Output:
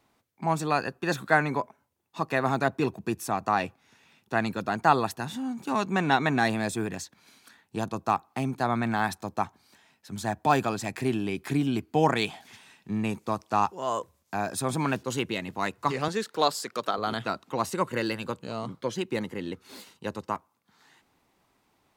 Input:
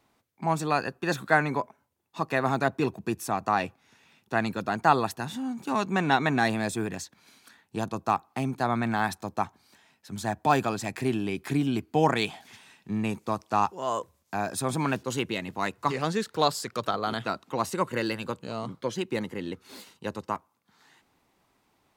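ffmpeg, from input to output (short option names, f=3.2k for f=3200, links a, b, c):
-filter_complex "[0:a]asettb=1/sr,asplit=3[a][b][c];[a]atrim=end=16.084[d];[b]atrim=start=16.08:end=16.98,asetpts=PTS-STARTPTS,afade=t=in:d=0.004:c=qsin,afade=t=out:st=0.896:d=0.004:c=qsin,highpass=230[e];[c]atrim=start=16.976[f];[d][e]acrossfade=d=0.004:c1=hsin:c2=qsin[g];[g][f]acrossfade=d=0.004:c1=qsin:c2=hsin"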